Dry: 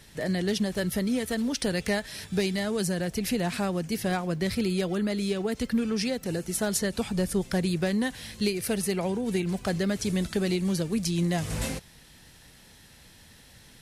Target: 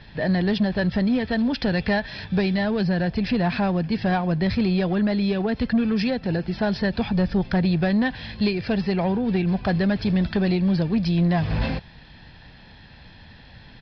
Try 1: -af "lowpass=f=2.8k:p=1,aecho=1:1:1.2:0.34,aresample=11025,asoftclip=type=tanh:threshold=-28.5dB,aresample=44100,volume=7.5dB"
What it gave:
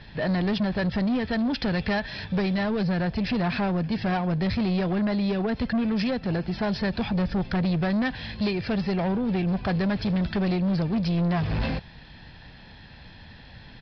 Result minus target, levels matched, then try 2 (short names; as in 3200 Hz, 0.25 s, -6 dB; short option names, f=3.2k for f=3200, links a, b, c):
soft clip: distortion +8 dB
-af "lowpass=f=2.8k:p=1,aecho=1:1:1.2:0.34,aresample=11025,asoftclip=type=tanh:threshold=-21dB,aresample=44100,volume=7.5dB"